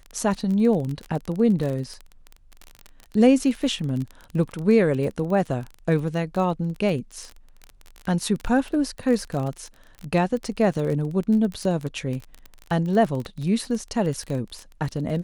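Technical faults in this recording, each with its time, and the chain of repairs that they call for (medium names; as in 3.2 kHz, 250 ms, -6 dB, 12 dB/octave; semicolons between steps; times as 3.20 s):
crackle 24 per s -28 dBFS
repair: de-click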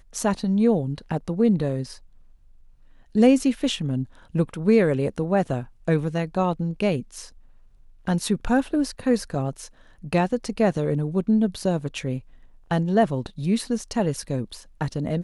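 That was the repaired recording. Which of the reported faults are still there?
nothing left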